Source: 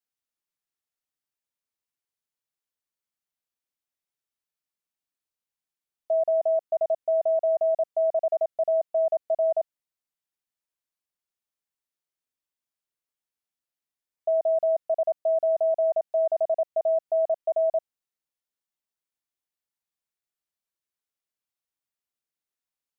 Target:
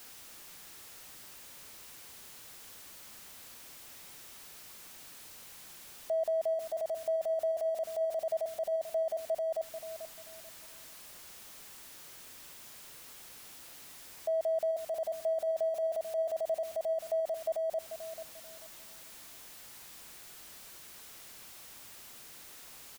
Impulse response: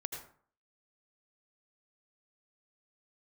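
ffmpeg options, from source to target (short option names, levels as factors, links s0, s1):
-filter_complex "[0:a]aeval=exprs='val(0)+0.5*0.00596*sgn(val(0))':c=same,alimiter=level_in=1.68:limit=0.0631:level=0:latency=1:release=26,volume=0.596,asplit=2[s0][s1];[s1]adelay=439,lowpass=f=860:p=1,volume=0.376,asplit=2[s2][s3];[s3]adelay=439,lowpass=f=860:p=1,volume=0.33,asplit=2[s4][s5];[s5]adelay=439,lowpass=f=860:p=1,volume=0.33,asplit=2[s6][s7];[s7]adelay=439,lowpass=f=860:p=1,volume=0.33[s8];[s0][s2][s4][s6][s8]amix=inputs=5:normalize=0,volume=1.26"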